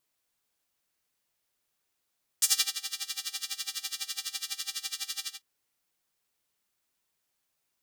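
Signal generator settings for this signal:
subtractive patch with tremolo C4, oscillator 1 square, oscillator 2 saw, interval +7 semitones, detune 15 cents, oscillator 2 level −0.5 dB, sub −28.5 dB, noise −29.5 dB, filter highpass, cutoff 3,900 Hz, Q 1.3, filter envelope 1 octave, filter decay 0.17 s, filter sustain 15%, attack 2.5 ms, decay 0.30 s, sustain −15.5 dB, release 0.17 s, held 2.83 s, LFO 12 Hz, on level 20.5 dB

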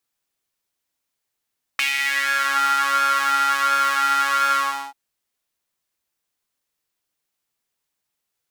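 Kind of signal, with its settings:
subtractive patch with pulse-width modulation C#4, sub −8 dB, filter highpass, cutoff 880 Hz, Q 4.9, filter envelope 1.5 octaves, filter decay 0.79 s, filter sustain 40%, attack 2.6 ms, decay 0.13 s, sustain −3 dB, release 0.38 s, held 2.76 s, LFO 1.4 Hz, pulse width 40%, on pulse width 12%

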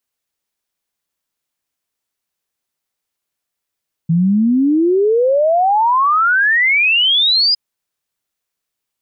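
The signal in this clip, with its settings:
exponential sine sweep 160 Hz → 5,000 Hz 3.46 s −10 dBFS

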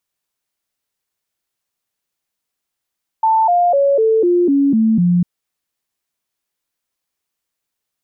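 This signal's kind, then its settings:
stepped sweep 887 Hz down, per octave 3, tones 8, 0.25 s, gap 0.00 s −10 dBFS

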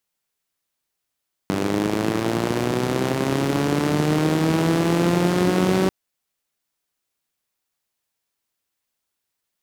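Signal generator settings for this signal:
pulse-train model of a four-cylinder engine, changing speed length 4.39 s, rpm 2,900, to 5,700, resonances 180/300 Hz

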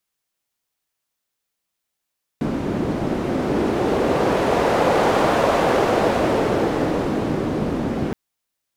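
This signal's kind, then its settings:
wind from filtered noise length 5.72 s, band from 260 Hz, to 600 Hz, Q 1.2, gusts 1, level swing 5.5 dB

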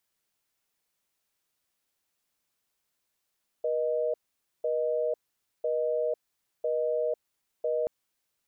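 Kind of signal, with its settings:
call progress tone busy tone, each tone −28 dBFS 4.23 s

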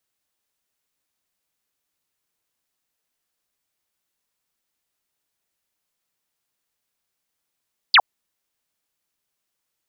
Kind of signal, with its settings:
single falling chirp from 5,100 Hz, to 660 Hz, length 0.06 s sine, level −8.5 dB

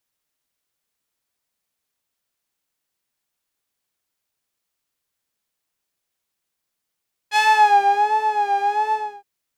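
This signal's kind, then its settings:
subtractive patch with vibrato G#5, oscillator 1 triangle, interval 0 semitones, oscillator 2 level 0 dB, sub −17.5 dB, noise −19 dB, filter bandpass, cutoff 190 Hz, Q 0.82, filter envelope 4 octaves, filter decay 0.51 s, filter sustain 35%, attack 54 ms, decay 0.95 s, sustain −6 dB, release 0.30 s, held 1.62 s, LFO 1.4 Hz, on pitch 69 cents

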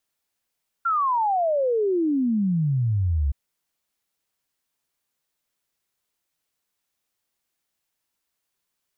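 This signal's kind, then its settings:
exponential sine sweep 1,400 Hz → 66 Hz 2.47 s −19 dBFS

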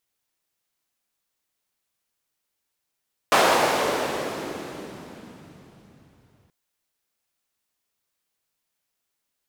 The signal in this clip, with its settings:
filter sweep on noise white, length 3.18 s bandpass, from 750 Hz, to 100 Hz, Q 1.2, exponential, gain ramp −36.5 dB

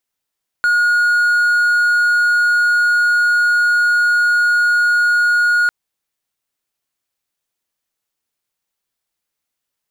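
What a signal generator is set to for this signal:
tone triangle 1,440 Hz −9 dBFS 5.05 s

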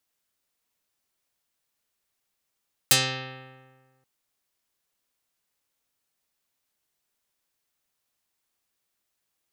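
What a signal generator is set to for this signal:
Karplus-Strong string C3, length 1.13 s, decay 1.58 s, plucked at 0.39, dark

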